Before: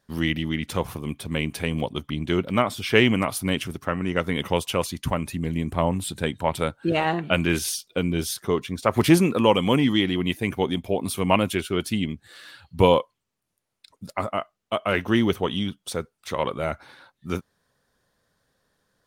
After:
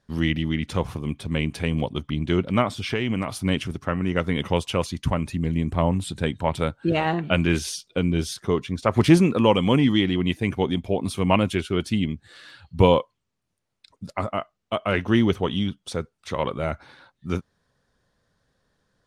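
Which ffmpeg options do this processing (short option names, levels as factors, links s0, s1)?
-filter_complex "[0:a]asettb=1/sr,asplit=3[s0][s1][s2];[s0]atrim=end=2.754[s3];[s1]atrim=start=2.75:end=3.45,asetpts=PTS-STARTPTS,afade=t=in:d=0.004:c=qsin,afade=t=out:st=0.696:d=0.004:c=qsin,acompressor=threshold=0.0794:ratio=4:attack=3.2:release=140:knee=1:detection=peak[s4];[s2]atrim=start=3.446[s5];[s3][s4]acrossfade=d=0.004:c1=hsin:c2=qsin[s6];[s6][s5]acrossfade=d=0.004:c1=qsin:c2=hsin,lowpass=7900,lowshelf=f=200:g=6.5,volume=0.891"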